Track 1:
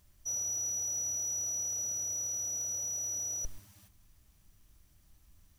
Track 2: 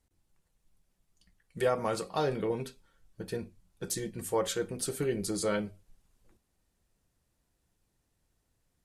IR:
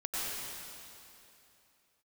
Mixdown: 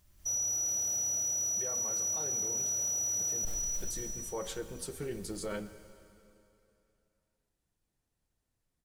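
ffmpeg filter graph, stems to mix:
-filter_complex "[0:a]volume=-5dB,asplit=2[a][b];[b]volume=-3.5dB[c];[1:a]flanger=delay=1.1:depth=9.2:regen=-72:speed=1.8:shape=triangular,volume=-12.5dB,asplit=2[d][e];[e]volume=-18dB[f];[2:a]atrim=start_sample=2205[g];[c][f]amix=inputs=2:normalize=0[h];[h][g]afir=irnorm=-1:irlink=0[i];[a][d][i]amix=inputs=3:normalize=0,dynaudnorm=f=160:g=3:m=9dB,alimiter=level_in=4dB:limit=-24dB:level=0:latency=1:release=14,volume=-4dB"

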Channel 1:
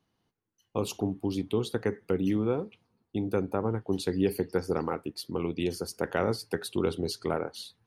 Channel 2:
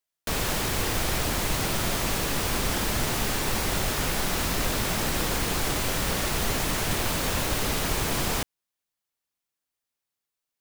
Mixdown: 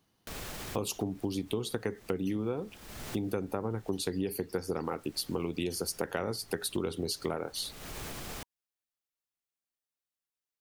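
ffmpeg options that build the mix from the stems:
-filter_complex "[0:a]highshelf=f=5.4k:g=9,volume=2.5dB,asplit=2[a][b];[1:a]bandreject=f=960:w=17,alimiter=limit=-23dB:level=0:latency=1:release=84,volume=-8.5dB[c];[b]apad=whole_len=467662[d];[c][d]sidechaincompress=threshold=-42dB:ratio=6:attack=7.2:release=332[e];[a][e]amix=inputs=2:normalize=0,acompressor=threshold=-29dB:ratio=6"

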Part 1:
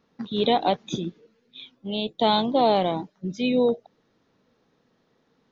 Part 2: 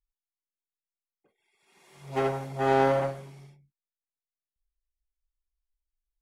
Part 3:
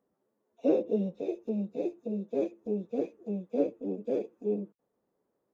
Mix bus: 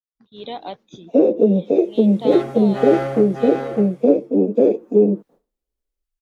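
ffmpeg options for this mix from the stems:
-filter_complex "[0:a]equalizer=f=190:w=1.5:g=-3,volume=-17dB[a];[1:a]bandreject=f=950:w=9.2,adelay=150,volume=-7dB,asplit=2[b][c];[c]volume=-3.5dB[d];[2:a]highpass=190,tiltshelf=f=970:g=5.5,dynaudnorm=f=230:g=7:m=11.5dB,adelay=500,volume=0.5dB[e];[a][e]amix=inputs=2:normalize=0,agate=range=-33dB:threshold=-47dB:ratio=3:detection=peak,acompressor=threshold=-18dB:ratio=2.5,volume=0dB[f];[d]aecho=0:1:607:1[g];[b][f][g]amix=inputs=3:normalize=0,dynaudnorm=f=110:g=7:m=8dB"

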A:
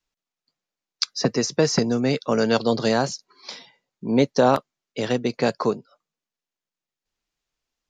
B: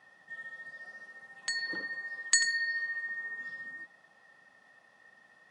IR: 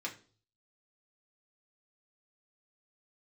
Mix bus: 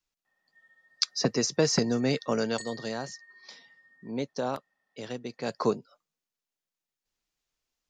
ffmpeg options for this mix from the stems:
-filter_complex "[0:a]highshelf=f=5.1k:g=5,volume=5.5dB,afade=t=out:st=2.24:d=0.4:silence=0.354813,afade=t=in:st=5.43:d=0.24:silence=0.298538[a];[1:a]adelay=250,volume=-17.5dB[b];[a][b]amix=inputs=2:normalize=0"

